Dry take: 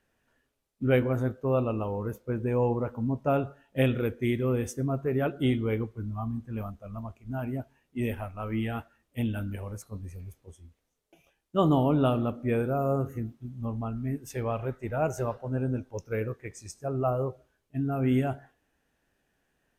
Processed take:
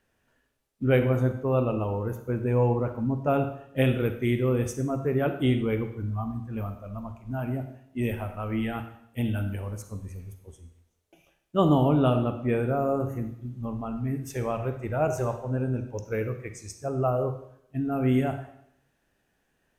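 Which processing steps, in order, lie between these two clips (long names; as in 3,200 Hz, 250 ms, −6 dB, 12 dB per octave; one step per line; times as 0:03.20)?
0:11.88–0:13.00: high-shelf EQ 11,000 Hz −8.5 dB
convolution reverb RT60 0.70 s, pre-delay 33 ms, DRR 8.5 dB
level +1.5 dB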